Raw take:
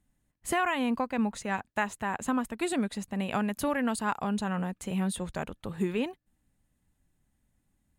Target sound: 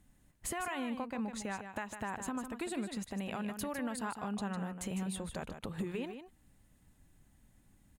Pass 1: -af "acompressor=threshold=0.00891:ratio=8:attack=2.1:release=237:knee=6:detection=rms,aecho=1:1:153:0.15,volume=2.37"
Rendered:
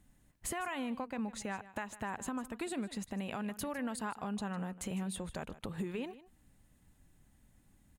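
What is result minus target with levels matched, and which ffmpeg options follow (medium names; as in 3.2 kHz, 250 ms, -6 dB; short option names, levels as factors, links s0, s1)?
echo-to-direct -8 dB
-af "acompressor=threshold=0.00891:ratio=8:attack=2.1:release=237:knee=6:detection=rms,aecho=1:1:153:0.376,volume=2.37"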